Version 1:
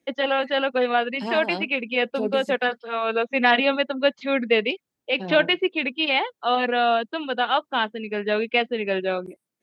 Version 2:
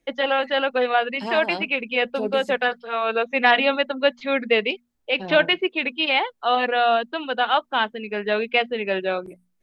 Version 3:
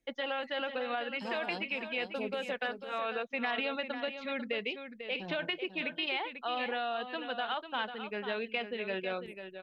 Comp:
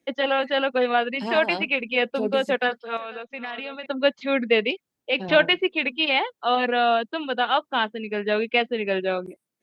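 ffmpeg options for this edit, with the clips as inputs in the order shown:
-filter_complex "[1:a]asplit=2[s0][s1];[0:a]asplit=4[s2][s3][s4][s5];[s2]atrim=end=1.362[s6];[s0]atrim=start=1.358:end=1.992[s7];[s3]atrim=start=1.988:end=2.972[s8];[2:a]atrim=start=2.968:end=3.862[s9];[s4]atrim=start=3.858:end=5.292[s10];[s1]atrim=start=5.288:end=6.082[s11];[s5]atrim=start=6.078[s12];[s6][s7]acrossfade=d=0.004:c1=hsin:c2=hsin[s13];[s13][s8]acrossfade=d=0.004:c1=hsin:c2=hsin[s14];[s14][s9]acrossfade=d=0.004:c1=hsin:c2=hsin[s15];[s15][s10]acrossfade=d=0.004:c1=hsin:c2=hsin[s16];[s16][s11]acrossfade=d=0.004:c1=hsin:c2=hsin[s17];[s17][s12]acrossfade=d=0.004:c1=hsin:c2=hsin"

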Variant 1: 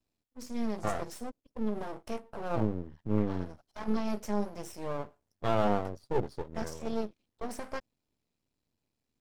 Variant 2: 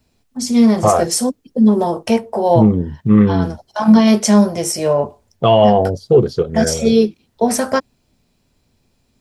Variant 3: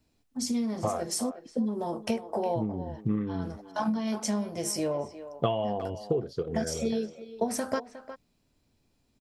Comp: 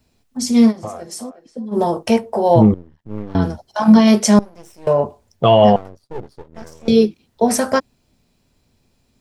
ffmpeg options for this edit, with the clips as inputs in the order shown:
-filter_complex "[0:a]asplit=3[s0][s1][s2];[1:a]asplit=5[s3][s4][s5][s6][s7];[s3]atrim=end=0.73[s8];[2:a]atrim=start=0.67:end=1.77[s9];[s4]atrim=start=1.71:end=2.742[s10];[s0]atrim=start=2.738:end=3.352[s11];[s5]atrim=start=3.348:end=4.392[s12];[s1]atrim=start=4.388:end=4.872[s13];[s6]atrim=start=4.868:end=5.762[s14];[s2]atrim=start=5.758:end=6.882[s15];[s7]atrim=start=6.878[s16];[s8][s9]acrossfade=d=0.06:c1=tri:c2=tri[s17];[s17][s10]acrossfade=d=0.06:c1=tri:c2=tri[s18];[s18][s11]acrossfade=d=0.004:c1=hsin:c2=hsin[s19];[s19][s12]acrossfade=d=0.004:c1=hsin:c2=hsin[s20];[s20][s13]acrossfade=d=0.004:c1=hsin:c2=hsin[s21];[s21][s14]acrossfade=d=0.004:c1=hsin:c2=hsin[s22];[s22][s15]acrossfade=d=0.004:c1=hsin:c2=hsin[s23];[s23][s16]acrossfade=d=0.004:c1=hsin:c2=hsin"

